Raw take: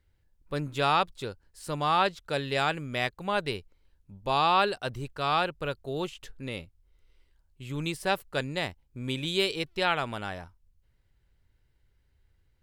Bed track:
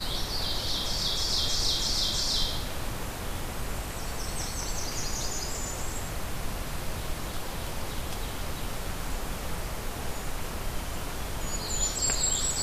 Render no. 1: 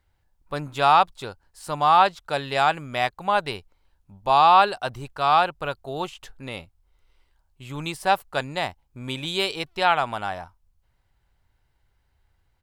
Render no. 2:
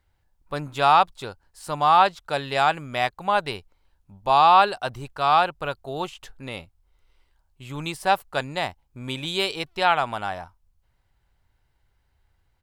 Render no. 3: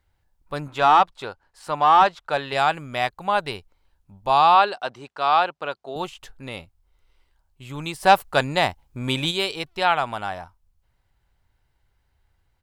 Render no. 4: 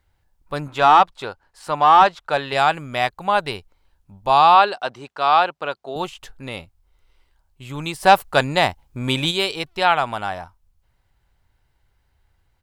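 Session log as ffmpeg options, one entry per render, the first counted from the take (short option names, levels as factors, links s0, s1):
-af "firequalizer=gain_entry='entry(480,0);entry(740,11);entry(1800,3)':delay=0.05:min_phase=1"
-af anull
-filter_complex "[0:a]asettb=1/sr,asplit=3[s0][s1][s2];[s0]atrim=end=0.684[s3];[s1]atrim=start=0.68:end=2.53,asetpts=PTS-STARTPTS,afade=t=in:d=0.004:c=qsin,afade=t=out:st=1.846:d=0.004:c=qsin,asplit=2[s4][s5];[s5]highpass=f=720:p=1,volume=3.55,asoftclip=type=tanh:threshold=0.562[s6];[s4][s6]amix=inputs=2:normalize=0,lowpass=f=1900:p=1,volume=0.501[s7];[s2]atrim=start=2.526[s8];[s3][s7]acrossfade=d=0.004:c1=hsin:c2=qsin[s9];[s9][s8]acrossfade=d=0.004:c1=qsin:c2=hsin,asettb=1/sr,asplit=3[s10][s11][s12];[s10]atrim=end=4.554[s13];[s11]atrim=start=4.55:end=5.96,asetpts=PTS-STARTPTS,afade=t=in:d=0.004:c=qsin,afade=t=out:st=1.406:d=0.004:c=qsin,highpass=250,lowpass=5900[s14];[s12]atrim=start=5.956[s15];[s13][s14]acrossfade=d=0.004:c1=hsin:c2=qsin[s16];[s16][s15]acrossfade=d=0.004:c1=qsin:c2=hsin,asplit=3[s17][s18][s19];[s17]afade=t=out:st=8.02:d=0.02[s20];[s18]acontrast=73,afade=t=in:st=8.02:d=0.02,afade=t=out:st=9.3:d=0.02[s21];[s19]afade=t=in:st=9.3:d=0.02[s22];[s20][s21][s22]amix=inputs=3:normalize=0"
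-af "volume=1.41,alimiter=limit=0.794:level=0:latency=1"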